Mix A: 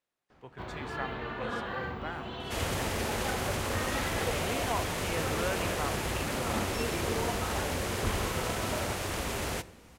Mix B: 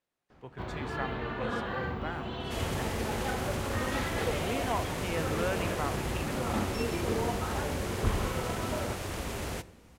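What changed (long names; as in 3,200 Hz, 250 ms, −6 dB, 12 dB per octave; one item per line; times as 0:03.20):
second sound −4.5 dB
master: add low-shelf EQ 450 Hz +4.5 dB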